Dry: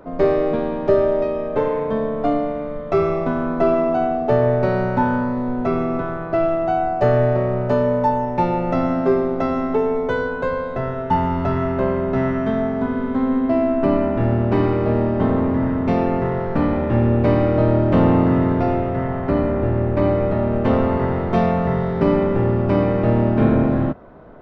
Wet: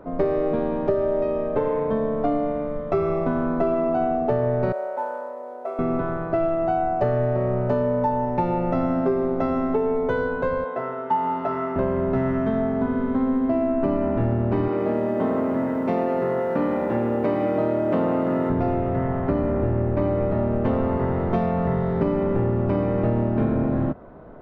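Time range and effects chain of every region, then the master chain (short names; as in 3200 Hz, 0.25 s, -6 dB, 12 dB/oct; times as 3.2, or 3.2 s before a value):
4.72–5.79 CVSD 64 kbps + ladder high-pass 500 Hz, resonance 55% + high shelf 4200 Hz -10 dB
10.64–11.76 HPF 510 Hz + tilt -1.5 dB/oct + doubler 16 ms -6 dB
14.68–18.5 HPF 230 Hz + lo-fi delay 0.101 s, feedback 80%, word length 8-bit, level -11 dB
whole clip: high shelf 2300 Hz -9 dB; compressor, threshold -18 dBFS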